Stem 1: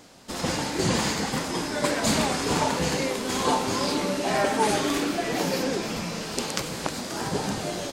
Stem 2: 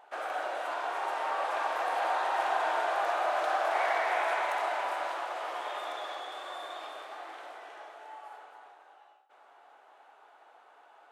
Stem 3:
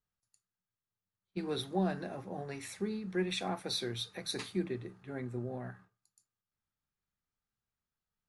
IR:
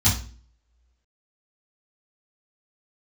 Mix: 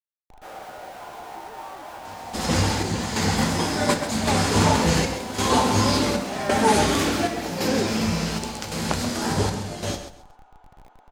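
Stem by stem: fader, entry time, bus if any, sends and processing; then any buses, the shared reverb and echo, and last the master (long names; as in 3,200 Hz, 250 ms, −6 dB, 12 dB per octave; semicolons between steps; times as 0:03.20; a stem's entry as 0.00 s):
+3.0 dB, 2.05 s, no bus, send −23.5 dB, echo send −9.5 dB, square-wave tremolo 0.9 Hz, depth 65%, duty 70%
−5.0 dB, 0.30 s, bus A, send −13 dB, no echo send, parametric band 380 Hz +10.5 dB 2.2 octaves; hum removal 356 Hz, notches 4; downward compressor 6 to 1, threshold −34 dBFS, peak gain reduction 14 dB
−10.0 dB, 0.00 s, bus A, no send, no echo send, three sine waves on the formant tracks
bus A: 0.0 dB, comparator with hysteresis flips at −49.5 dBFS; brickwall limiter −42.5 dBFS, peak gain reduction 5.5 dB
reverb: on, RT60 0.40 s, pre-delay 3 ms
echo: repeating echo 133 ms, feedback 23%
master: no processing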